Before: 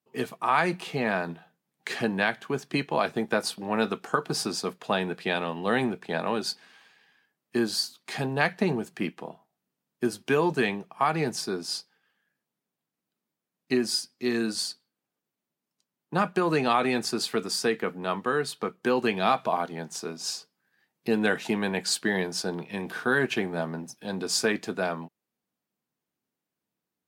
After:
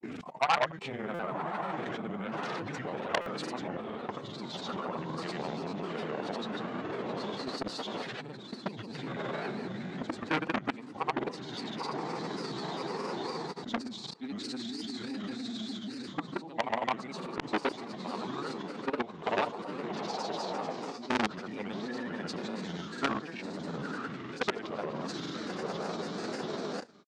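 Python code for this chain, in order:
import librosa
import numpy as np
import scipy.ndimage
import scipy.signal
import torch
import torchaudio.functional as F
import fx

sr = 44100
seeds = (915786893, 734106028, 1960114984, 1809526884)

p1 = fx.notch(x, sr, hz=1900.0, q=16.0)
p2 = p1 + fx.echo_diffused(p1, sr, ms=894, feedback_pct=41, wet_db=-5.5, dry=0)
p3 = fx.level_steps(p2, sr, step_db=22)
p4 = fx.formant_shift(p3, sr, semitones=-3)
p5 = fx.rider(p4, sr, range_db=5, speed_s=0.5)
p6 = fx.dynamic_eq(p5, sr, hz=630.0, q=0.87, threshold_db=-43.0, ratio=4.0, max_db=4)
p7 = fx.granulator(p6, sr, seeds[0], grain_ms=100.0, per_s=20.0, spray_ms=100.0, spread_st=0)
p8 = scipy.signal.sosfilt(scipy.signal.butter(2, 5200.0, 'lowpass', fs=sr, output='sos'), p7)
p9 = fx.granulator(p8, sr, seeds[1], grain_ms=100.0, per_s=20.0, spray_ms=100.0, spread_st=3)
p10 = fx.buffer_glitch(p9, sr, at_s=(1.14, 3.21), block=256, repeats=8)
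p11 = fx.transformer_sat(p10, sr, knee_hz=3200.0)
y = p11 * 10.0 ** (5.0 / 20.0)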